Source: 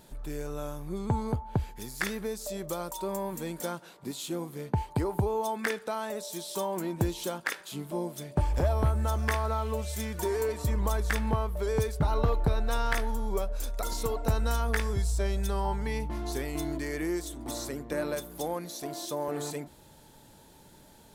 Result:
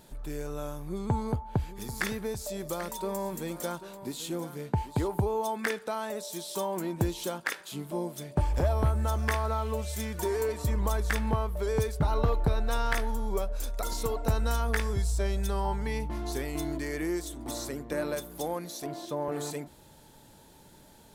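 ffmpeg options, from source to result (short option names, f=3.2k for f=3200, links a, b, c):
-filter_complex "[0:a]asettb=1/sr,asplit=3[a][b][c];[a]atrim=end=0.814[d];[b]atrim=start=0.81:end=5.08,asetpts=PTS-STARTPTS,afade=t=in:d=0.004:c=qsin,afade=t=out:st=4.266:d=0.004:c=qsin,aecho=1:1:789:0.224,atrim=end_sample=188307[e];[c]atrim=start=5.076[f];[d][e]acrossfade=d=0.004:c1=hsin:c2=qsin[g];[g][f]acrossfade=d=0.004:c1=qsin:c2=hsin,asettb=1/sr,asplit=3[h][i][j];[h]atrim=end=18.864[k];[i]atrim=start=18.86:end=19.32,asetpts=PTS-STARTPTS,afade=t=in:d=0.004:c=qsin,afade=t=out:st=0.456:d=0.004:c=qsin,bass=f=250:g=4,treble=f=4k:g=-11[l];[j]atrim=start=19.316[m];[k][l]acrossfade=d=0.004:c1=hsin:c2=qsin[n];[n][m]acrossfade=d=0.004:c1=qsin:c2=hsin"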